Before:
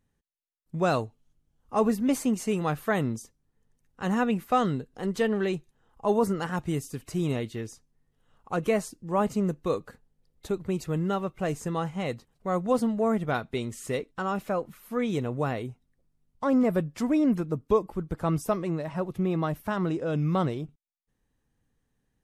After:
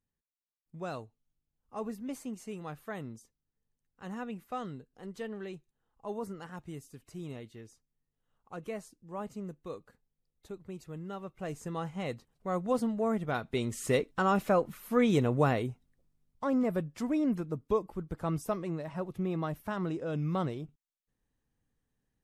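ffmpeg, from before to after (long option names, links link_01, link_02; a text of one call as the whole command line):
ffmpeg -i in.wav -af "volume=2.5dB,afade=type=in:start_time=11.05:duration=1.02:silence=0.354813,afade=type=in:start_time=13.33:duration=0.58:silence=0.421697,afade=type=out:start_time=15.4:duration=1.13:silence=0.375837" out.wav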